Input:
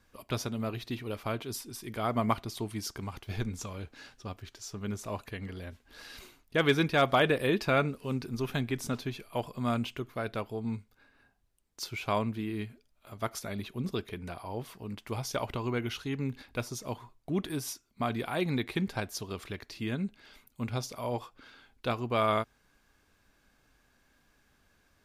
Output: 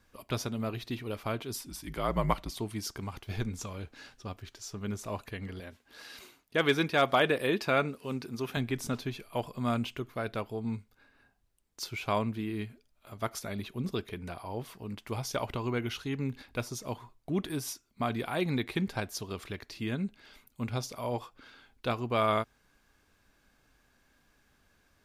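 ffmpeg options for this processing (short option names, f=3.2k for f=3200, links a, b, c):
-filter_complex "[0:a]asettb=1/sr,asplit=3[a][b][c];[a]atrim=end=1.664[d];[b]atrim=start=1.66:end=2.56,asetpts=PTS-STARTPTS,afade=t=in:d=0.004:c=qsin,afade=t=out:st=0.896:d=0.004:c=qsin,afreqshift=-63[e];[c]atrim=start=2.556[f];[d][e]acrossfade=d=0.004:c1=hsin:c2=qsin[g];[g][f]acrossfade=d=0.004:c1=qsin:c2=hsin,asettb=1/sr,asplit=3[h][i][j];[h]atrim=end=5.604[k];[i]atrim=start=5.6:end=8.57,asetpts=PTS-STARTPTS,afade=t=in:d=0.004:c=qsin,afade=t=out:st=2.966:d=0.004:c=qsin,highpass=f=200:p=1[l];[j]atrim=start=8.566[m];[k][l]acrossfade=d=0.004:c1=hsin:c2=qsin[n];[n][m]acrossfade=d=0.004:c1=qsin:c2=hsin"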